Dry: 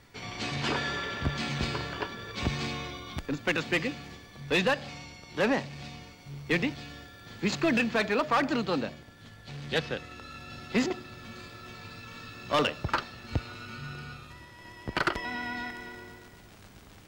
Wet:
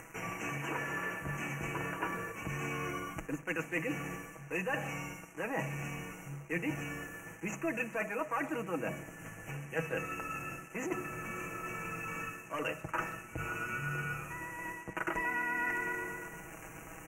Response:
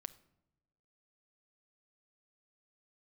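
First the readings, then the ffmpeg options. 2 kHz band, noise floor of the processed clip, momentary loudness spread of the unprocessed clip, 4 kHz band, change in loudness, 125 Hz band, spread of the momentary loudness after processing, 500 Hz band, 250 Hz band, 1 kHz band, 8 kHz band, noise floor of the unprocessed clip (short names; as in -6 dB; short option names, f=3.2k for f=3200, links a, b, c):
-3.5 dB, -50 dBFS, 18 LU, -16.5 dB, -7.0 dB, -5.0 dB, 8 LU, -7.0 dB, -7.5 dB, -4.5 dB, -2.0 dB, -52 dBFS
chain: -filter_complex "[0:a]bandreject=f=50:t=h:w=6,bandreject=f=100:t=h:w=6,bandreject=f=150:t=h:w=6,bandreject=f=200:t=h:w=6,areverse,acompressor=threshold=-38dB:ratio=16,areverse,acrusher=bits=8:mix=0:aa=0.5,aecho=1:1:6.2:0.54,asplit=2[a][b];[1:a]atrim=start_sample=2205,lowshelf=f=180:g=-11[c];[b][c]afir=irnorm=-1:irlink=0,volume=9.5dB[d];[a][d]amix=inputs=2:normalize=0,acompressor=mode=upward:threshold=-42dB:ratio=2.5,asuperstop=centerf=4100:order=12:qfactor=1.3,asplit=2[e][f];[f]adelay=130,highpass=300,lowpass=3.4k,asoftclip=type=hard:threshold=-26.5dB,volume=-23dB[g];[e][g]amix=inputs=2:normalize=0,aresample=32000,aresample=44100,volume=-3.5dB"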